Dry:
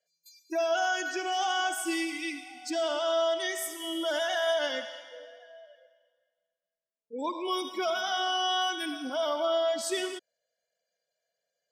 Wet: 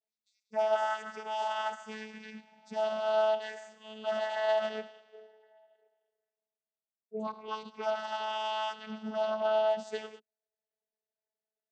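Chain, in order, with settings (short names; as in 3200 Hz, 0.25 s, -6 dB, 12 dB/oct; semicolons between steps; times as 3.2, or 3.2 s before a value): vocoder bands 16, saw 217 Hz; upward expander 1.5:1, over -48 dBFS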